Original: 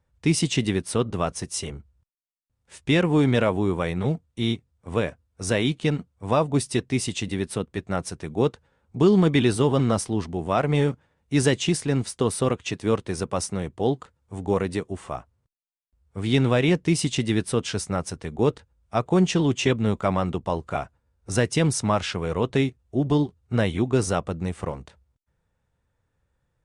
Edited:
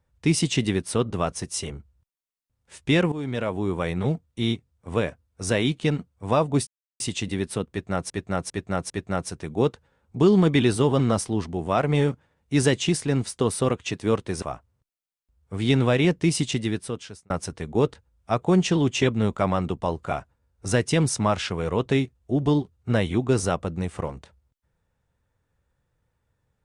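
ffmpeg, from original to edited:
ffmpeg -i in.wav -filter_complex "[0:a]asplit=9[link_01][link_02][link_03][link_04][link_05][link_06][link_07][link_08][link_09];[link_01]atrim=end=3.12,asetpts=PTS-STARTPTS,afade=type=out:start_time=3.116:duration=0.004:curve=hsin:silence=0.16788[link_10];[link_02]atrim=start=3.12:end=6.67,asetpts=PTS-STARTPTS,afade=type=in:duration=0.8:silence=0.16788,afade=type=out:start_time=3.546:duration=0.004:curve=hsin[link_11];[link_03]atrim=start=6.67:end=7,asetpts=PTS-STARTPTS,volume=0[link_12];[link_04]atrim=start=7:end=8.102,asetpts=PTS-STARTPTS,afade=type=in:duration=0.004:curve=hsin[link_13];[link_05]atrim=start=7.698:end=8.102[link_14];[link_06]atrim=start=7.698:end=8.102[link_15];[link_07]atrim=start=7.698:end=13.222[link_16];[link_08]atrim=start=15.058:end=17.94,asetpts=PTS-STARTPTS,afade=type=out:start_time=2.002:duration=0.88[link_17];[link_09]atrim=start=17.94,asetpts=PTS-STARTPTS,afade=type=in:duration=0.004:curve=hsin[link_18];[link_10][link_11][link_12][link_13]concat=n=4:v=0:a=1[link_19];[link_19][link_14]acrossfade=duration=0.004:curve1=hsin:curve2=hsin[link_20];[link_20][link_15]acrossfade=duration=0.004:curve1=hsin:curve2=hsin[link_21];[link_21][link_16]acrossfade=duration=0.004:curve1=hsin:curve2=hsin[link_22];[link_17][link_18]concat=n=2:v=0:a=1[link_23];[link_22][link_23]acrossfade=duration=0.004:curve1=hsin:curve2=hsin" out.wav

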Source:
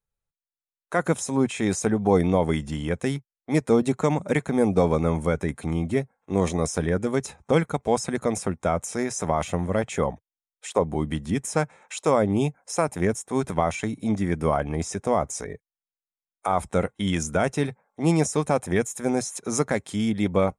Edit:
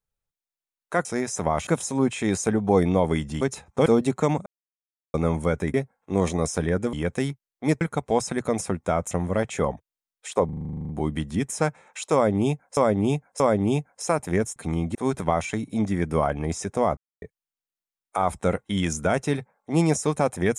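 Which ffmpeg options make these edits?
ffmpeg -i in.wav -filter_complex "[0:a]asplit=28[link_01][link_02][link_03][link_04][link_05][link_06][link_07][link_08][link_09][link_10][link_11][link_12][link_13][link_14][link_15][link_16][link_17][link_18][link_19][link_20][link_21][link_22][link_23][link_24][link_25][link_26][link_27][link_28];[link_01]atrim=end=1.052[link_29];[link_02]atrim=start=8.878:end=9.502[link_30];[link_03]atrim=start=1.048:end=2.792[link_31];[link_04]atrim=start=7.128:end=7.582[link_32];[link_05]atrim=start=3.668:end=4.27,asetpts=PTS-STARTPTS,afade=type=out:start_time=0.598:duration=0.004:curve=hsin[link_33];[link_06]atrim=start=4.27:end=4.95,asetpts=PTS-STARTPTS,volume=0[link_34];[link_07]atrim=start=4.95:end=5.552,asetpts=PTS-STARTPTS,afade=type=in:duration=0.004:curve=hsin[link_35];[link_08]atrim=start=5.938:end=7.132[link_36];[link_09]atrim=start=2.788:end=3.672[link_37];[link_10]atrim=start=7.578:end=8.882[link_38];[link_11]atrim=start=9.498:end=10.882[link_39];[link_12]atrim=start=10.838:end=10.882[link_40];[link_13]atrim=start=10.838:end=10.882[link_41];[link_14]atrim=start=10.838:end=10.882[link_42];[link_15]atrim=start=10.838:end=10.882[link_43];[link_16]atrim=start=10.838:end=10.882[link_44];[link_17]atrim=start=10.838:end=10.882[link_45];[link_18]atrim=start=10.838:end=10.882[link_46];[link_19]atrim=start=10.838:end=10.882[link_47];[link_20]atrim=start=10.838:end=10.882[link_48];[link_21]atrim=start=10.838:end=10.882[link_49];[link_22]atrim=start=10.838:end=12.722[link_50];[link_23]atrim=start=12.088:end=12.722[link_51];[link_24]atrim=start=12.088:end=13.252[link_52];[link_25]atrim=start=5.548:end=5.942[link_53];[link_26]atrim=start=13.248:end=15.27,asetpts=PTS-STARTPTS,afade=type=out:start_time=2.018:duration=0.004:curve=hsin[link_54];[link_27]atrim=start=15.27:end=15.52,asetpts=PTS-STARTPTS,volume=0[link_55];[link_28]atrim=start=15.52,asetpts=PTS-STARTPTS,afade=type=in:duration=0.004:curve=hsin[link_56];[link_29][link_30]acrossfade=duration=0.004:curve1=hsin:curve2=hsin[link_57];[link_57][link_31]acrossfade=duration=0.004:curve1=hsin:curve2=hsin[link_58];[link_58][link_32]acrossfade=duration=0.004:curve1=hsin:curve2=hsin[link_59];[link_33][link_34][link_35]concat=n=3:v=0:a=1[link_60];[link_59][link_60]acrossfade=duration=0.004:curve1=hsin:curve2=hsin[link_61];[link_61][link_36]acrossfade=duration=0.004:curve1=hsin:curve2=hsin[link_62];[link_62][link_37]acrossfade=duration=0.004:curve1=hsin:curve2=hsin[link_63];[link_63][link_38]acrossfade=duration=0.004:curve1=hsin:curve2=hsin[link_64];[link_64][link_39]acrossfade=duration=0.004:curve1=hsin:curve2=hsin[link_65];[link_65][link_40]acrossfade=duration=0.004:curve1=hsin:curve2=hsin[link_66];[link_66][link_41]acrossfade=duration=0.004:curve1=hsin:curve2=hsin[link_67];[link_67][link_42]acrossfade=duration=0.004:curve1=hsin:curve2=hsin[link_68];[link_68][link_43]acrossfade=duration=0.004:curve1=hsin:curve2=hsin[link_69];[link_69][link_44]acrossfade=duration=0.004:curve1=hsin:curve2=hsin[link_70];[link_70][link_45]acrossfade=duration=0.004:curve1=hsin:curve2=hsin[link_71];[link_71][link_46]acrossfade=duration=0.004:curve1=hsin:curve2=hsin[link_72];[link_72][link_47]acrossfade=duration=0.004:curve1=hsin:curve2=hsin[link_73];[link_73][link_48]acrossfade=duration=0.004:curve1=hsin:curve2=hsin[link_74];[link_74][link_49]acrossfade=duration=0.004:curve1=hsin:curve2=hsin[link_75];[link_75][link_50]acrossfade=duration=0.004:curve1=hsin:curve2=hsin[link_76];[link_76][link_51]acrossfade=duration=0.004:curve1=hsin:curve2=hsin[link_77];[link_77][link_52]acrossfade=duration=0.004:curve1=hsin:curve2=hsin[link_78];[link_78][link_53]acrossfade=duration=0.004:curve1=hsin:curve2=hsin[link_79];[link_54][link_55][link_56]concat=n=3:v=0:a=1[link_80];[link_79][link_80]acrossfade=duration=0.004:curve1=hsin:curve2=hsin" out.wav

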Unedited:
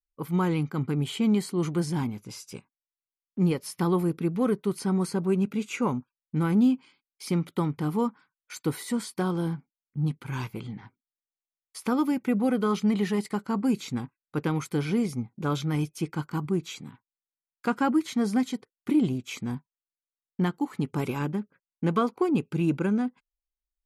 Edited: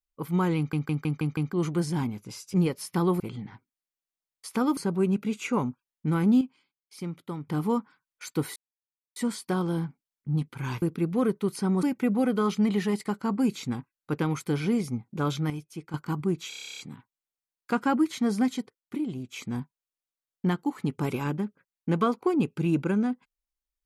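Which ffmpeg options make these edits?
ffmpeg -i in.wav -filter_complex "[0:a]asplit=29[link_01][link_02][link_03][link_04][link_05][link_06][link_07][link_08][link_09][link_10][link_11][link_12][link_13][link_14][link_15][link_16][link_17][link_18][link_19][link_20][link_21][link_22][link_23][link_24][link_25][link_26][link_27][link_28][link_29];[link_01]atrim=end=0.732[link_30];[link_02]atrim=start=0.568:end=0.732[link_31];[link_03]atrim=start=0.568:end=0.732[link_32];[link_04]atrim=start=0.568:end=0.732[link_33];[link_05]atrim=start=0.568:end=0.732[link_34];[link_06]atrim=start=0.568:end=0.732[link_35];[link_07]atrim=start=1.528:end=2.542[link_36];[link_08]atrim=start=3.388:end=4.052[link_37];[link_09]atrim=start=10.508:end=12.082[link_38];[link_10]atrim=start=5.058:end=6.702[link_39];[link_11]atrim=start=6.698:end=7.762,asetpts=PTS-STARTPTS,volume=-8.5dB[link_40];[link_12]atrim=start=7.758:end=8.85,asetpts=PTS-STARTPTS,afade=type=out:start_time=1.088:duration=0.004:curve=hsin,apad=pad_dur=0.6[link_41];[link_13]atrim=start=8.85:end=10.512,asetpts=PTS-STARTPTS,afade=type=in:duration=0.004:curve=hsin[link_42];[link_14]atrim=start=4.048:end=5.062[link_43];[link_15]atrim=start=12.078:end=15.752[link_44];[link_16]atrim=start=15.748:end=16.192,asetpts=PTS-STARTPTS,volume=-8.5dB[link_45];[link_17]atrim=start=16.188:end=16.772[link_46];[link_18]atrim=start=16.738:end=16.772[link_47];[link_19]atrim=start=16.738:end=16.772[link_48];[link_20]atrim=start=16.738:end=16.772[link_49];[link_21]atrim=start=16.738:end=16.772[link_50];[link_22]atrim=start=16.738:end=16.772[link_51];[link_23]atrim=start=16.738:end=16.772[link_52];[link_24]atrim=start=16.738:end=16.772[link_53];[link_25]atrim=start=16.738:end=16.772[link_54];[link_26]atrim=start=16.738:end=16.772[link_55];[link_27]atrim=start=16.738:end=19.01,asetpts=PTS-STARTPTS,afade=type=out:start_time=1.802:duration=0.47:silence=0.334965[link_56];[link_28]atrim=start=19.01:end=19.03,asetpts=PTS-STARTPTS,volume=-9.5dB[link_57];[link_29]atrim=start=19.03,asetpts=PTS-STARTPTS,afade=type=in:duration=0.47:silence=0.334965[link_58];[link_30][link_31]acrossfade=duration=0.004:curve1=hsin:curve2=hsin[link_59];[link_59][link_32]acrossfade=duration=0.004:curve1=hsin:curve2=hsin[link_60];[link_60][link_33]acrossfade=duration=0.004:curve1=hsin:curve2=hsin[link_61];[link_61][link_34]acrossfade=duration=0.004:curve1=hsin:curve2=hsin[link_62];[link_62][link_35]acrossfade=duration=0.004:curve1=hsin:curve2=hsin[link_63];[link_63][link_36]acrossfade=duration=0.004:curve1=hsin:curve2=hsin[link_64];[link_64][link_37]acrossfade=duration=0.004:curve1=hsin:curve2=hsin[link_65];[link_65][link_38]acrossfade=duration=0.004:curve1=hsin:curve2=hsin[link_66];[link_66][link_39]acrossfade=duration=0.004:curve1=hsin:curve2=hsin[link_67];[link_67][link_40]acrossfade=duration=0.004:curve1=hsin:curve2=hsin[link_68];[link_41][link_42]concat=n=2:v=0:a=1[link_69];[link_68][link_69]acrossfade=duration=0.004:curve1=hsin:curve2=hsin[link_70];[link_70][link_43]acrossfade=duration=0.004:curve1=hsin:curve2=hsin[link_71];[link_71][link_44]acrossfade=duration=0.004:curve1=hsin:curve2=hsin[link_72];[link_72][link_45]acrossfade=duration=0.004:curve1=hsin:curve2=hsin[link_73];[link_73][link_46]acrossfade=duration=0.004:curve1=hsin:curve2=hsin[link_74];[link_74][link_47]acrossfade=duration=0.004:curve1=hsin:curve2=hsin[link_75];[link_75][link_48]acrossfade=duration=0.004:curve1=hsin:curve2=hsin[link_76];[link_76][link_49]acrossfade=duration=0.004:curve1=hsin:curve2=hsin[link_77];[link_77][link_50]acrossfade=duration=0.004:curve1=hsin:curve2=hsin[link_78];[link_78][link_51]acrossfade=duration=0.004:curve1=hsin:curve2=hsin[link_79];[link_79][link_52]acrossfade=duration=0.004:curve1=hsin:curve2=hsin[link_80];[link_80][link_53]acrossfade=duration=0.004:curve1=hsin:curve2=hsin[link_81];[link_81][link_54]acrossfade=duration=0.004:curve1=hsin:curve2=hsin[link_82];[link_82][link_55]acrossfade=duration=0.004:curve1=hsin:curve2=hsin[link_83];[link_56][link_57][link_58]concat=n=3:v=0:a=1[link_84];[link_83][link_84]acrossfade=duration=0.004:curve1=hsin:curve2=hsin" out.wav

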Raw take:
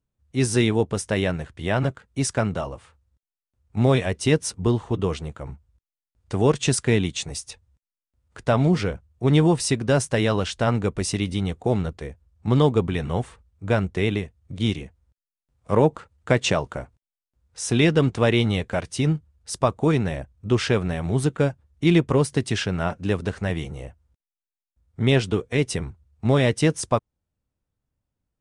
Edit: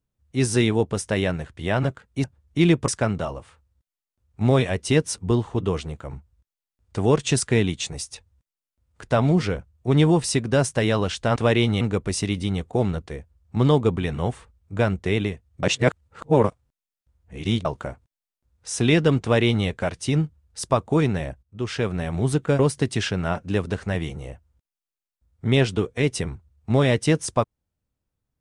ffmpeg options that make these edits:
ffmpeg -i in.wav -filter_complex "[0:a]asplit=9[link_01][link_02][link_03][link_04][link_05][link_06][link_07][link_08][link_09];[link_01]atrim=end=2.242[link_10];[link_02]atrim=start=21.498:end=22.142[link_11];[link_03]atrim=start=2.238:end=10.722[link_12];[link_04]atrim=start=18.128:end=18.582[link_13];[link_05]atrim=start=10.718:end=14.542[link_14];[link_06]atrim=start=14.538:end=16.562,asetpts=PTS-STARTPTS,areverse[link_15];[link_07]atrim=start=16.558:end=20.34,asetpts=PTS-STARTPTS,afade=type=out:start_time=3.778:duration=0.004:curve=hsin:silence=0.141254[link_16];[link_08]atrim=start=20.34:end=21.502,asetpts=PTS-STARTPTS,afade=type=in:duration=0.64:silence=0.141254[link_17];[link_09]atrim=start=22.138[link_18];[link_10][link_11]acrossfade=duration=0.004:curve1=hsin:curve2=hsin[link_19];[link_19][link_12]acrossfade=duration=0.004:curve1=hsin:curve2=hsin[link_20];[link_20][link_13]acrossfade=duration=0.004:curve1=hsin:curve2=hsin[link_21];[link_21][link_14]acrossfade=duration=0.004:curve1=hsin:curve2=hsin[link_22];[link_22][link_15]acrossfade=duration=0.004:curve1=hsin:curve2=hsin[link_23];[link_16][link_17]concat=n=2:v=0:a=1[link_24];[link_23][link_24]acrossfade=duration=0.004:curve1=hsin:curve2=hsin[link_25];[link_25][link_18]acrossfade=duration=0.004:curve1=hsin:curve2=hsin" out.wav

